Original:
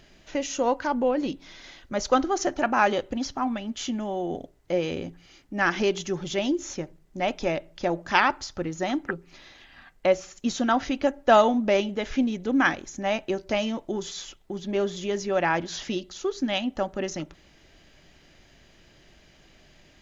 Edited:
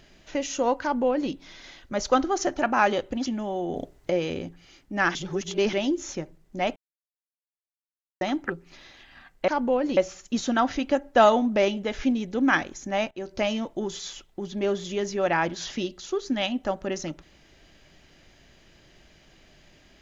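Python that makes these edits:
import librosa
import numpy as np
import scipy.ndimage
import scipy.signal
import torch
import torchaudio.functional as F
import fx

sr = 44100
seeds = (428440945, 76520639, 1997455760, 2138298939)

y = fx.edit(x, sr, fx.duplicate(start_s=0.82, length_s=0.49, to_s=10.09),
    fx.cut(start_s=3.26, length_s=0.61),
    fx.clip_gain(start_s=4.37, length_s=0.34, db=6.5),
    fx.reverse_span(start_s=5.76, length_s=0.58),
    fx.silence(start_s=7.37, length_s=1.45),
    fx.fade_in_from(start_s=13.23, length_s=0.25, floor_db=-20.0), tone=tone)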